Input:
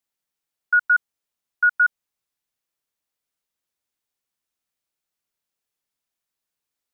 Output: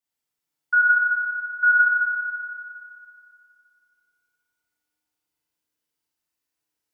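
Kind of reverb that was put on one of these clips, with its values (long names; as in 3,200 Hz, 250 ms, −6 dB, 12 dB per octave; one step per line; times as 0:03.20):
feedback delay network reverb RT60 2.5 s, low-frequency decay 1.25×, high-frequency decay 0.85×, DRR −8.5 dB
level −7.5 dB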